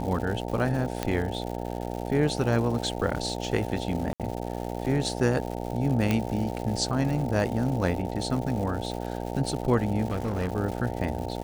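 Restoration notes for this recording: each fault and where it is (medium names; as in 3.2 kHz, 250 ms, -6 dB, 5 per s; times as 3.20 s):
buzz 60 Hz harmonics 15 -33 dBFS
crackle 270 per s -34 dBFS
1.03 s: pop -12 dBFS
4.13–4.20 s: dropout 67 ms
6.11 s: pop -11 dBFS
10.07–10.52 s: clipped -23.5 dBFS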